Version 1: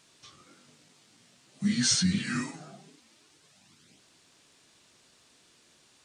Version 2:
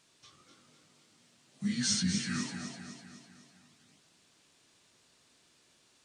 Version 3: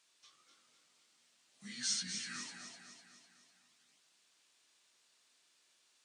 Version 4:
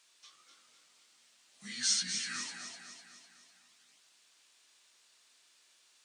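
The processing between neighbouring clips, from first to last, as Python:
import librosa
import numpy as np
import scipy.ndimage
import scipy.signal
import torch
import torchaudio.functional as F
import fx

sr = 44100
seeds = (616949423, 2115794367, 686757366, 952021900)

y1 = fx.echo_feedback(x, sr, ms=251, feedback_pct=52, wet_db=-7.5)
y1 = y1 * 10.0 ** (-5.5 / 20.0)
y2 = fx.highpass(y1, sr, hz=1200.0, slope=6)
y2 = y2 * 10.0 ** (-4.5 / 20.0)
y3 = fx.low_shelf(y2, sr, hz=450.0, db=-6.5)
y3 = y3 * 10.0 ** (6.0 / 20.0)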